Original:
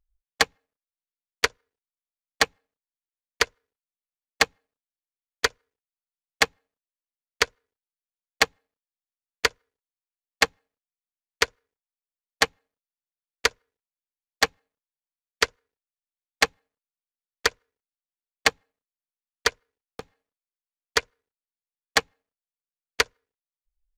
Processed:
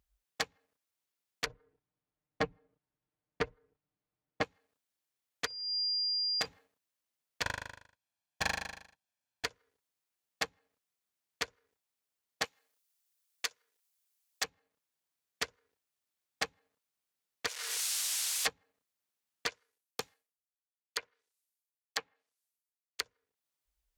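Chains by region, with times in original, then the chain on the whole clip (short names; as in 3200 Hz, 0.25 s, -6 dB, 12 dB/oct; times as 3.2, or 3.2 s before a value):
1.46–4.43 LPF 2800 Hz 6 dB/oct + tilt -4 dB/oct + comb 6.6 ms, depth 85%
5.45–6.44 compressor 5:1, threshold -27 dBFS + whine 4800 Hz -37 dBFS
7.42–9.45 minimum comb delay 1.2 ms + high shelf 7300 Hz -7.5 dB + flutter echo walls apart 6.7 m, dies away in 0.53 s
12.44–14.44 HPF 700 Hz 6 dB/oct + high shelf 3800 Hz +10.5 dB
17.47–18.47 switching spikes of -21.5 dBFS + BPF 470–7300 Hz
19.47–23.01 RIAA curve recording + treble ducked by the level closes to 2100 Hz, closed at -21 dBFS + three-band expander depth 100%
whole clip: HPF 70 Hz; compressor 6:1, threshold -33 dBFS; limiter -22.5 dBFS; gain +7.5 dB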